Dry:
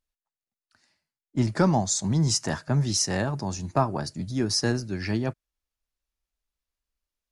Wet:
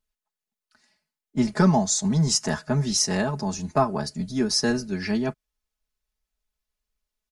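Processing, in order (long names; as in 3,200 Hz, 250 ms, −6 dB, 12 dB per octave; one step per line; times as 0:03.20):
comb filter 4.7 ms, depth 84%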